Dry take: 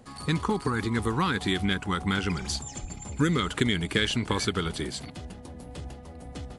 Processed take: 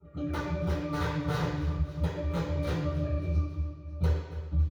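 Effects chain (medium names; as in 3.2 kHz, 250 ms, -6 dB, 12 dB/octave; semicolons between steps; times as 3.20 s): gliding tape speed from 171% -> 109%; hum notches 50/100/150/200 Hz; gate -36 dBFS, range -32 dB; compression 4:1, threshold -34 dBFS, peak gain reduction 12.5 dB; saturation -32 dBFS, distortion -12 dB; phaser 1.6 Hz, delay 3.6 ms, feedback 23%; pitch-class resonator D, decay 0.29 s; square tremolo 3 Hz, depth 65%, duty 15%; integer overflow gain 49.5 dB; feedback delay 274 ms, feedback 37%, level -18.5 dB; reverberation RT60 0.75 s, pre-delay 3 ms, DRR -18 dB; three bands compressed up and down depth 70%; trim +4 dB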